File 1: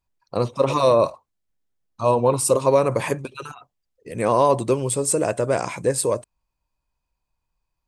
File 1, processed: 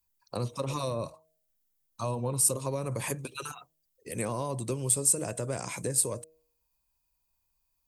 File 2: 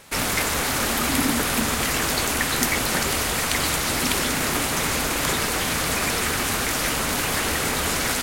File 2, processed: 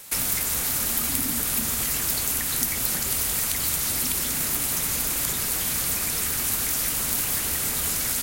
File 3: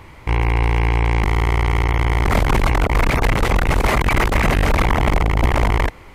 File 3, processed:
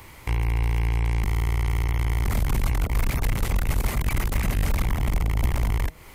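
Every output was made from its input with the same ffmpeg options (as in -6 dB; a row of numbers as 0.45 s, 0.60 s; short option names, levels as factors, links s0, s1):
-filter_complex "[0:a]acrossover=split=220[s0][s1];[s1]acompressor=threshold=0.0398:ratio=6[s2];[s0][s2]amix=inputs=2:normalize=0,aemphasis=mode=production:type=75fm,bandreject=f=158.5:t=h:w=4,bandreject=f=317:t=h:w=4,bandreject=f=475.5:t=h:w=4,bandreject=f=634:t=h:w=4,volume=0.596"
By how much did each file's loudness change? -9.0 LU, -1.0 LU, -7.5 LU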